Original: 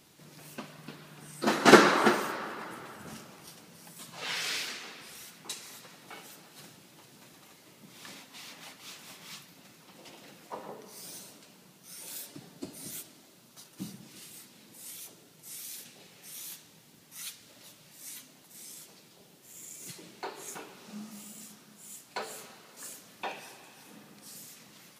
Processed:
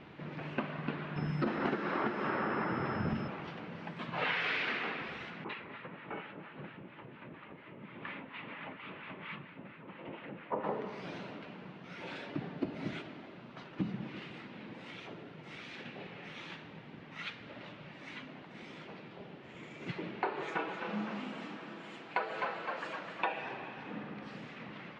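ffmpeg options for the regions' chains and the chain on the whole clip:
-filter_complex "[0:a]asettb=1/sr,asplit=3[s0][s1][s2];[s0]atrim=end=1.164[s3];[s1]atrim=start=1.16:end=3.28,asetpts=PTS-STARTPTS,afade=t=in:d=0.004:c=qsin,afade=t=out:st=2.116:d=0.004:c=qsin,lowshelf=f=210:g=12,acrossover=split=2200|5300[s4][s5][s6];[s4]acompressor=threshold=0.0251:ratio=4[s7];[s5]acompressor=threshold=0.00562:ratio=4[s8];[s6]acompressor=threshold=0.0126:ratio=4[s9];[s7][s8][s9]amix=inputs=3:normalize=0,aeval=exprs='val(0)+0.00631*sin(2*PI*5200*n/s)':c=same[s10];[s2]atrim=start=3.276[s11];[s3][s10]acrossfade=d=0.004:c1=hsin:c2=qsin[s12];[s12][s11]acrossfade=d=0.004:c1=qsin:c2=hsin,asettb=1/sr,asplit=3[s13][s14][s15];[s13]atrim=end=5.444[s16];[s14]atrim=start=5.44:end=10.64,asetpts=PTS-STARTPTS,afade=t=in:d=0.004:c=qsin,afade=t=out:st=5.196:d=0.004:c=qsin,lowpass=f=3200:w=0.5412,lowpass=f=3200:w=1.3066,acrossover=split=890[s17][s18];[s17]aeval=exprs='val(0)*(1-0.7/2+0.7/2*cos(2*PI*4.3*n/s))':c=same[s19];[s18]aeval=exprs='val(0)*(1-0.7/2-0.7/2*cos(2*PI*4.3*n/s))':c=same[s20];[s19][s20]amix=inputs=2:normalize=0,bandreject=f=740:w=8.9[s21];[s15]atrim=start=10.636[s22];[s16][s21]acrossfade=d=0.004:c1=hsin:c2=qsin[s23];[s23][s22]acrossfade=d=0.004:c1=qsin:c2=hsin,asettb=1/sr,asplit=3[s24][s25][s26];[s24]atrim=end=20.424[s27];[s25]atrim=start=20.42:end=23.42,asetpts=PTS-STARTPTS,afade=t=in:d=0.004:c=qsin,afade=t=out:st=2.996:d=0.004:c=qsin,bass=f=250:g=-8,treble=f=4000:g=3,aecho=1:1:6.1:0.59,atrim=end_sample=132300,asplit=8[s28][s29][s30][s31][s32][s33][s34][s35];[s29]adelay=256,afreqshift=44,volume=0.355[s36];[s30]adelay=512,afreqshift=88,volume=0.2[s37];[s31]adelay=768,afreqshift=132,volume=0.111[s38];[s32]adelay=1024,afreqshift=176,volume=0.0624[s39];[s33]adelay=1280,afreqshift=220,volume=0.0351[s40];[s34]adelay=1536,afreqshift=264,volume=0.0195[s41];[s35]adelay=1792,afreqshift=308,volume=0.011[s42];[s28][s36][s37][s38][s39][s40][s41][s42]amix=inputs=8:normalize=0,atrim=end_sample=132300[s43];[s26]atrim=start=23.416[s44];[s27][s43]acrossfade=d=0.004:c1=hsin:c2=qsin[s45];[s45][s44]acrossfade=d=0.004:c1=qsin:c2=hsin,lowpass=f=2600:w=0.5412,lowpass=f=2600:w=1.3066,acompressor=threshold=0.01:ratio=16,volume=3.35"

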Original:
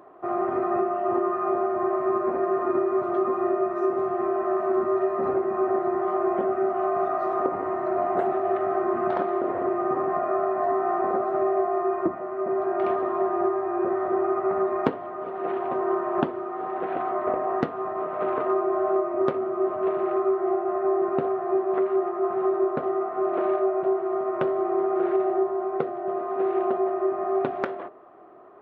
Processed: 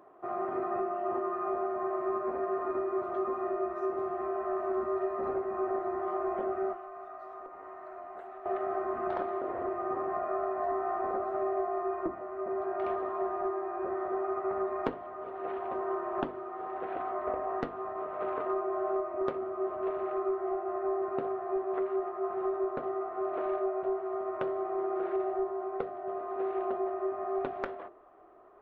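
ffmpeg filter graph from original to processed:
-filter_complex "[0:a]asettb=1/sr,asplit=3[s0][s1][s2];[s0]atrim=end=6.734[s3];[s1]atrim=start=6.73:end=8.46,asetpts=PTS-STARTPTS,afade=t=in:d=0.004:c=qsin,afade=t=out:st=1.726:d=0.004:c=qsin,equalizer=f=100:w=0.34:g=-13.5,acrossover=split=290|770[s4][s5][s6];[s4]acompressor=threshold=0.00316:ratio=4[s7];[s5]acompressor=threshold=0.00708:ratio=4[s8];[s6]acompressor=threshold=0.00891:ratio=4[s9];[s7][s8][s9]amix=inputs=3:normalize=0[s10];[s2]atrim=start=8.456[s11];[s3][s10]acrossfade=d=0.004:c1=hsin:c2=qsin[s12];[s12][s11]acrossfade=d=0.004:c1=qsin:c2=hsin,asubboost=boost=9:cutoff=50,bandreject=f=50:t=h:w=6,bandreject=f=100:t=h:w=6,bandreject=f=150:t=h:w=6,bandreject=f=200:t=h:w=6,bandreject=f=250:t=h:w=6,bandreject=f=300:t=h:w=6,bandreject=f=350:t=h:w=6,volume=0.447"

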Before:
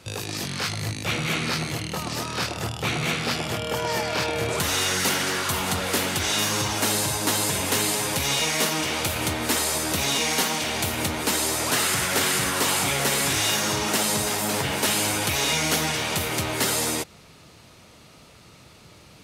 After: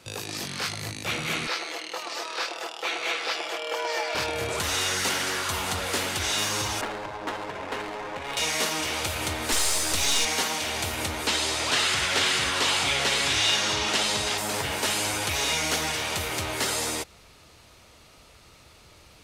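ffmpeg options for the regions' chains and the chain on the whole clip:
-filter_complex "[0:a]asettb=1/sr,asplit=3[s0][s1][s2];[s0]atrim=end=1.474[s3];[s1]atrim=start=1.47:end=4.15,asetpts=PTS-STARTPTS,afade=t=in:d=0.004:c=qsin,afade=t=out:st=2.676:d=0.004:c=qsin,highpass=f=380:w=0.5412,highpass=f=380:w=1.3066,acrossover=split=6600[s4][s5];[s5]acompressor=threshold=0.00316:ratio=4:attack=1:release=60[s6];[s4][s6]amix=inputs=2:normalize=0,aecho=1:1:6:0.45,atrim=end_sample=118188[s7];[s2]atrim=start=4.146[s8];[s3][s7]acrossfade=d=0.004:c1=hsin:c2=qsin[s9];[s9][s8]acrossfade=d=0.004:c1=qsin:c2=hsin,asettb=1/sr,asplit=3[s10][s11][s12];[s10]atrim=end=6.814[s13];[s11]atrim=start=6.81:end=8.37,asetpts=PTS-STARTPTS,afade=t=in:d=0.004:c=qsin,afade=t=out:st=1.556:d=0.004:c=qsin,highpass=f=380:p=1,aemphasis=mode=reproduction:type=75fm,adynamicsmooth=sensitivity=3:basefreq=710[s14];[s12]atrim=start=8.366[s15];[s13][s14]acrossfade=d=0.004:c1=hsin:c2=qsin[s16];[s16][s15]acrossfade=d=0.004:c1=qsin:c2=hsin,asettb=1/sr,asplit=3[s17][s18][s19];[s17]atrim=end=9.524[s20];[s18]atrim=start=9.52:end=10.25,asetpts=PTS-STARTPTS,afade=t=in:d=0.004:c=qsin,afade=t=out:st=0.726:d=0.004:c=qsin,highshelf=f=3400:g=9,aeval=exprs='clip(val(0),-1,0.0841)':c=same[s21];[s19]atrim=start=10.246[s22];[s20][s21]acrossfade=d=0.004:c1=hsin:c2=qsin[s23];[s23][s22]acrossfade=d=0.004:c1=qsin:c2=hsin,asettb=1/sr,asplit=3[s24][s25][s26];[s24]atrim=end=11.274[s27];[s25]atrim=start=11.27:end=14.38,asetpts=PTS-STARTPTS,afade=t=in:d=0.004:c=qsin,afade=t=out:st=3.106:d=0.004:c=qsin,lowpass=7200,equalizer=f=3300:t=o:w=1.2:g=6[s28];[s26]atrim=start=14.376[s29];[s27][s28]acrossfade=d=0.004:c1=hsin:c2=qsin[s30];[s30][s29]acrossfade=d=0.004:c1=qsin:c2=hsin,asubboost=boost=6.5:cutoff=60,acrossover=split=9400[s31][s32];[s32]acompressor=threshold=0.0126:ratio=4:attack=1:release=60[s33];[s31][s33]amix=inputs=2:normalize=0,lowshelf=f=190:g=-6.5,volume=0.794"

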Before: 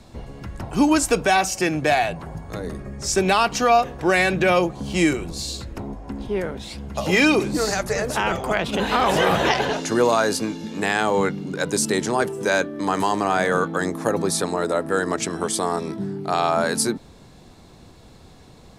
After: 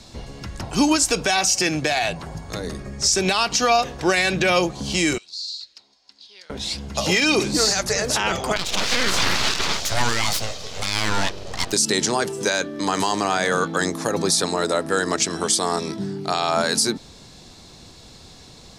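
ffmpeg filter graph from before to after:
-filter_complex "[0:a]asettb=1/sr,asplit=3[s0][s1][s2];[s0]atrim=end=5.184[s3];[s1]atrim=start=5.18:end=6.5,asetpts=PTS-STARTPTS,afade=t=in:d=0.004:c=qsin,afade=t=out:st=1.316:d=0.004:c=qsin,bandpass=f=4400:t=q:w=4.3,acompressor=threshold=0.00891:ratio=3:attack=3.2:release=140:knee=1:detection=peak[s4];[s2]atrim=start=6.496[s5];[s3][s4]acrossfade=d=0.004:c1=hsin:c2=qsin[s6];[s6][s5]acrossfade=d=0.004:c1=qsin:c2=hsin,asettb=1/sr,asplit=3[s7][s8][s9];[s7]atrim=end=8.564[s10];[s8]atrim=start=8.56:end=11.73,asetpts=PTS-STARTPTS,afade=t=in:d=0.004:c=qsin,afade=t=out:st=3.166:d=0.004:c=qsin,highpass=190,aeval=exprs='abs(val(0))':c=same[s11];[s9]atrim=start=11.726[s12];[s10][s11]acrossfade=d=0.004:c1=hsin:c2=qsin[s13];[s13][s12]acrossfade=d=0.004:c1=qsin:c2=hsin,equalizer=f=5200:t=o:w=1.8:g=12.5,alimiter=limit=0.376:level=0:latency=1:release=81"

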